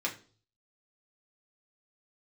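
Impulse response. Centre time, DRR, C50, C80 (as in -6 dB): 14 ms, -2.0 dB, 13.0 dB, 18.0 dB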